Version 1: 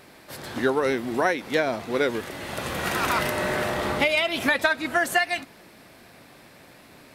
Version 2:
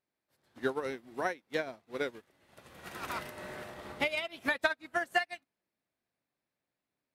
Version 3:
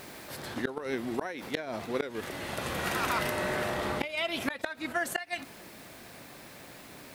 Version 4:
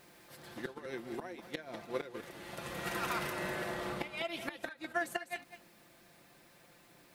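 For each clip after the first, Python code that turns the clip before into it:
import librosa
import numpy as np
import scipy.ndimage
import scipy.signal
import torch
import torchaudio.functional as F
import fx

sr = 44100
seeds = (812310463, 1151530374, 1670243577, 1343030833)

y1 = fx.upward_expand(x, sr, threshold_db=-40.0, expansion=2.5)
y1 = y1 * 10.0 ** (-5.5 / 20.0)
y2 = fx.rider(y1, sr, range_db=4, speed_s=2.0)
y2 = fx.gate_flip(y2, sr, shuts_db=-22.0, range_db=-29)
y2 = fx.env_flatten(y2, sr, amount_pct=70)
y2 = y2 * 10.0 ** (3.0 / 20.0)
y3 = y2 + 0.45 * np.pad(y2, (int(5.8 * sr / 1000.0), 0))[:len(y2)]
y3 = y3 + 10.0 ** (-8.5 / 20.0) * np.pad(y3, (int(200 * sr / 1000.0), 0))[:len(y3)]
y3 = fx.upward_expand(y3, sr, threshold_db=-42.0, expansion=1.5)
y3 = y3 * 10.0 ** (-5.5 / 20.0)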